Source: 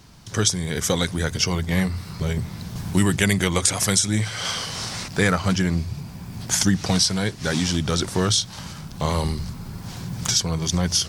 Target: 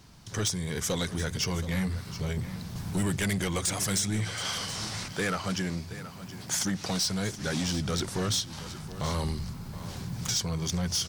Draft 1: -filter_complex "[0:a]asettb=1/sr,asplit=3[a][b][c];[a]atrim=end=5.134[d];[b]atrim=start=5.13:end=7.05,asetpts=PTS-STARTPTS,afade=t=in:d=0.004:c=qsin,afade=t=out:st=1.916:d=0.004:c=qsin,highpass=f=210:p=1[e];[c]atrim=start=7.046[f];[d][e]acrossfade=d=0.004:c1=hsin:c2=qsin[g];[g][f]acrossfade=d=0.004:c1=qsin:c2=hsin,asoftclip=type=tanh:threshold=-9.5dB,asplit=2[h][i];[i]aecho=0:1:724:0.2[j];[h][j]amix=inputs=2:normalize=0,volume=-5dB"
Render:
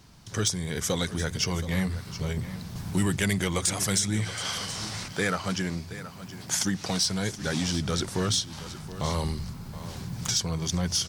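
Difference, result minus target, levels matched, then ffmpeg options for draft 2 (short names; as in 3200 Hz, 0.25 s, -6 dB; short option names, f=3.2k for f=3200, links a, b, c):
soft clip: distortion -9 dB
-filter_complex "[0:a]asettb=1/sr,asplit=3[a][b][c];[a]atrim=end=5.134[d];[b]atrim=start=5.13:end=7.05,asetpts=PTS-STARTPTS,afade=t=in:d=0.004:c=qsin,afade=t=out:st=1.916:d=0.004:c=qsin,highpass=f=210:p=1[e];[c]atrim=start=7.046[f];[d][e]acrossfade=d=0.004:c1=hsin:c2=qsin[g];[g][f]acrossfade=d=0.004:c1=qsin:c2=hsin,asoftclip=type=tanh:threshold=-17.5dB,asplit=2[h][i];[i]aecho=0:1:724:0.2[j];[h][j]amix=inputs=2:normalize=0,volume=-5dB"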